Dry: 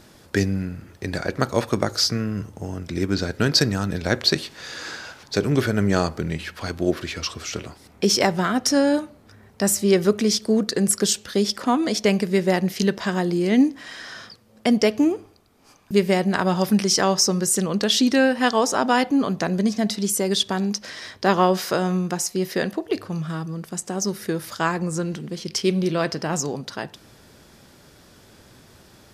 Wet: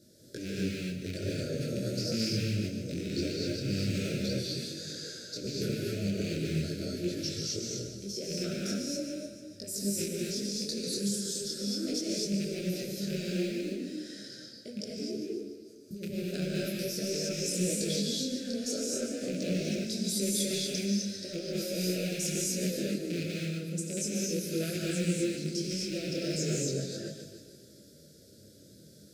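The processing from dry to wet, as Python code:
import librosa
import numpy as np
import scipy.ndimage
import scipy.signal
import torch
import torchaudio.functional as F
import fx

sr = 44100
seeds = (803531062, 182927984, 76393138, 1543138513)

p1 = fx.rattle_buzz(x, sr, strikes_db=-26.0, level_db=-9.0)
p2 = scipy.signal.sosfilt(scipy.signal.butter(2, 100.0, 'highpass', fs=sr, output='sos'), p1)
p3 = fx.band_shelf(p2, sr, hz=1900.0, db=-14.5, octaves=1.7)
p4 = fx.over_compress(p3, sr, threshold_db=-25.0, ratio=-1.0)
p5 = scipy.signal.sosfilt(scipy.signal.ellip(3, 1.0, 60, [600.0, 1400.0], 'bandstop', fs=sr, output='sos'), p4)
p6 = p5 + fx.echo_feedback(p5, sr, ms=147, feedback_pct=58, wet_db=-9.5, dry=0)
p7 = fx.rev_gated(p6, sr, seeds[0], gate_ms=280, shape='rising', drr_db=-3.5)
p8 = fx.detune_double(p7, sr, cents=14)
y = p8 * 10.0 ** (-8.5 / 20.0)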